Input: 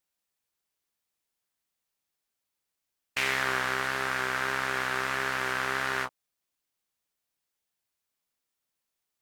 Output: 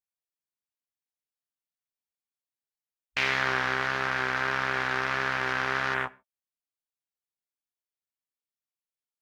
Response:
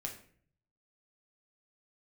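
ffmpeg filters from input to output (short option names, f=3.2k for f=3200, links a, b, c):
-filter_complex "[0:a]afwtdn=0.01,asplit=2[a][b];[1:a]atrim=start_sample=2205,afade=t=out:st=0.2:d=0.01,atrim=end_sample=9261[c];[b][c]afir=irnorm=-1:irlink=0,volume=-10.5dB[d];[a][d]amix=inputs=2:normalize=0"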